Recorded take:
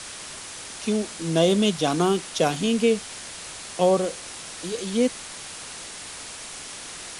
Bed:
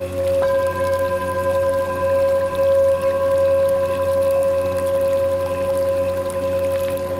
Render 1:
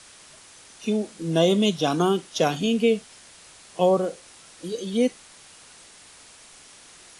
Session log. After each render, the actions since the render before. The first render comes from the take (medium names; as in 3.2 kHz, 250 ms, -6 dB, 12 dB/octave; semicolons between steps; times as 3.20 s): noise print and reduce 11 dB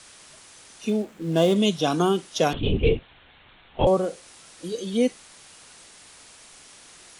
0.88–1.56 s: median filter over 9 samples; 2.53–3.87 s: LPC vocoder at 8 kHz whisper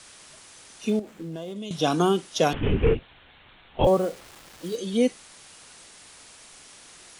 0.99–1.71 s: compression 8:1, threshold -32 dBFS; 2.54–2.95 s: one-bit delta coder 16 kbps, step -31 dBFS; 3.84–4.76 s: send-on-delta sampling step -42 dBFS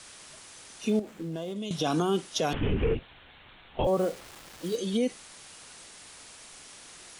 peak limiter -18 dBFS, peak gain reduction 9.5 dB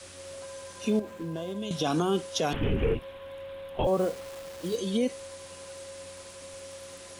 add bed -25.5 dB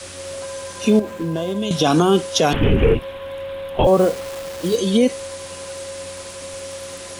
trim +11.5 dB